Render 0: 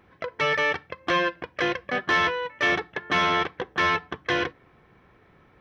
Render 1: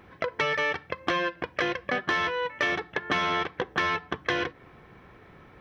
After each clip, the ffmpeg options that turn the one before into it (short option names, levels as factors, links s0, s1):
-af "acompressor=threshold=0.0316:ratio=6,volume=1.88"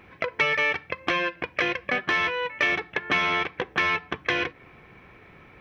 -af "equalizer=f=2400:t=o:w=0.45:g=9.5"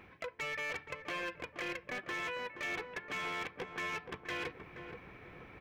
-filter_complex "[0:a]areverse,acompressor=threshold=0.02:ratio=4,areverse,volume=35.5,asoftclip=hard,volume=0.0282,asplit=2[s0][s1];[s1]adelay=475,lowpass=f=990:p=1,volume=0.501,asplit=2[s2][s3];[s3]adelay=475,lowpass=f=990:p=1,volume=0.43,asplit=2[s4][s5];[s5]adelay=475,lowpass=f=990:p=1,volume=0.43,asplit=2[s6][s7];[s7]adelay=475,lowpass=f=990:p=1,volume=0.43,asplit=2[s8][s9];[s9]adelay=475,lowpass=f=990:p=1,volume=0.43[s10];[s0][s2][s4][s6][s8][s10]amix=inputs=6:normalize=0,volume=0.668"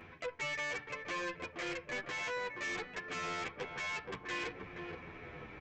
-filter_complex "[0:a]aresample=16000,asoftclip=type=tanh:threshold=0.0106,aresample=44100,asplit=2[s0][s1];[s1]adelay=9.4,afreqshift=-0.59[s2];[s0][s2]amix=inputs=2:normalize=1,volume=2.24"